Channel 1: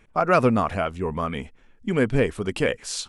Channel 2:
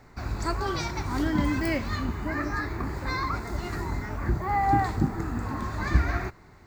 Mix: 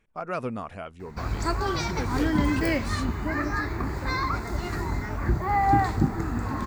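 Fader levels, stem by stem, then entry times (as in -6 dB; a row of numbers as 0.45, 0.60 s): -12.5, +2.0 dB; 0.00, 1.00 s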